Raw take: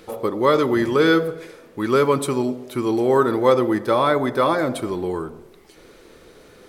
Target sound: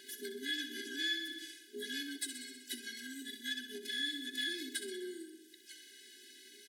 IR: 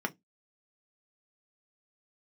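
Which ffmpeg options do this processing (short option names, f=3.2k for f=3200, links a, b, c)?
-filter_complex "[0:a]afftfilt=real='re*(1-between(b*sr/4096,210,2800))':imag='im*(1-between(b*sr/4096,210,2800))':win_size=4096:overlap=0.75,asplit=4[a][b][c][d];[b]asetrate=22050,aresample=44100,atempo=2,volume=-7dB[e];[c]asetrate=52444,aresample=44100,atempo=0.840896,volume=-15dB[f];[d]asetrate=88200,aresample=44100,atempo=0.5,volume=-17dB[g];[a][e][f][g]amix=inputs=4:normalize=0,equalizer=f=400:t=o:w=0.67:g=8,equalizer=f=1.6k:t=o:w=0.67:g=4,equalizer=f=10k:t=o:w=0.67:g=5,aeval=exprs='0.282*(cos(1*acos(clip(val(0)/0.282,-1,1)))-cos(1*PI/2))+0.0251*(cos(3*acos(clip(val(0)/0.282,-1,1)))-cos(3*PI/2))+0.00224*(cos(8*acos(clip(val(0)/0.282,-1,1)))-cos(8*PI/2))':c=same,acontrast=60,asplit=2[h][i];[i]aecho=0:1:63|126|189|252|315|378|441:0.316|0.18|0.103|0.0586|0.0334|0.019|0.0108[j];[h][j]amix=inputs=2:normalize=0,acompressor=threshold=-29dB:ratio=6,highshelf=f=5.6k:g=-6.5,afftfilt=real='re*eq(mod(floor(b*sr/1024/220),2),1)':imag='im*eq(mod(floor(b*sr/1024/220),2),1)':win_size=1024:overlap=0.75,volume=1dB"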